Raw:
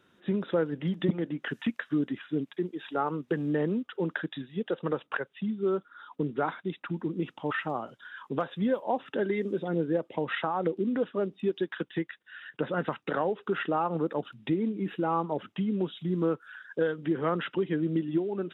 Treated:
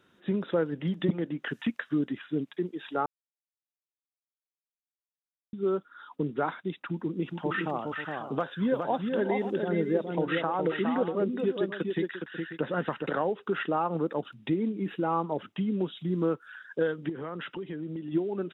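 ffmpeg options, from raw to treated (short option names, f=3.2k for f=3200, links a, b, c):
-filter_complex "[0:a]asplit=3[a][b][c];[a]afade=t=out:st=7.3:d=0.02[d];[b]aecho=1:1:414|540:0.596|0.237,afade=t=in:st=7.3:d=0.02,afade=t=out:st=13.05:d=0.02[e];[c]afade=t=in:st=13.05:d=0.02[f];[d][e][f]amix=inputs=3:normalize=0,asettb=1/sr,asplit=3[g][h][i];[g]atrim=end=17.094[j];[h]atrim=start=17.09:end=18.12,asetpts=PTS-STARTPTS,afade=t=in:d=0.004:c=qsin,afade=t=out:st=1.026:d=0.004:c=qsin,acompressor=threshold=-34dB:ratio=4:attack=3.2:release=140:knee=1:detection=peak[k];[i]atrim=start=18.116[l];[j][k]acrossfade=d=0.004:c1=hsin:c2=qsin[m];[m][l]acrossfade=d=0.004:c1=qsin:c2=hsin,asplit=3[n][o][p];[n]atrim=end=3.06,asetpts=PTS-STARTPTS,afade=t=out:st=3.056:d=0.004:c=hsin[q];[o]atrim=start=3.06:end=5.53,asetpts=PTS-STARTPTS,volume=0[r];[p]atrim=start=5.53,asetpts=PTS-STARTPTS,afade=t=in:d=0.004:c=hsin[s];[q][r][s]concat=n=3:v=0:a=1"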